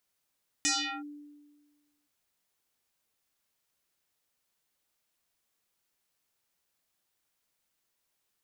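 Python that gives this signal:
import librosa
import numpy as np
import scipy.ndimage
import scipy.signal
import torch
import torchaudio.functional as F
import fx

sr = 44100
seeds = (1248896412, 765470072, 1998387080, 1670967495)

y = fx.fm2(sr, length_s=1.42, level_db=-23, carrier_hz=293.0, ratio=3.71, index=7.4, index_s=0.38, decay_s=1.45, shape='linear')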